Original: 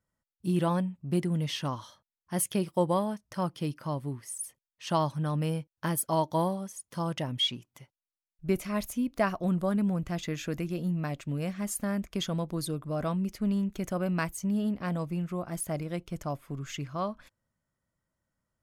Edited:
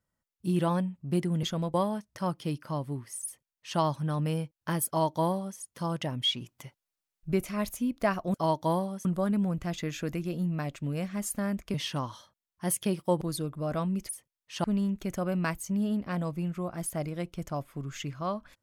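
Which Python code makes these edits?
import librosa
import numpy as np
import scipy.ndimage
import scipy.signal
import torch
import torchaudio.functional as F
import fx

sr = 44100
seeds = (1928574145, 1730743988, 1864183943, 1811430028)

y = fx.edit(x, sr, fx.swap(start_s=1.43, length_s=1.47, other_s=12.19, other_length_s=0.31),
    fx.duplicate(start_s=4.4, length_s=0.55, to_s=13.38),
    fx.duplicate(start_s=6.03, length_s=0.71, to_s=9.5),
    fx.clip_gain(start_s=7.57, length_s=0.91, db=5.5), tone=tone)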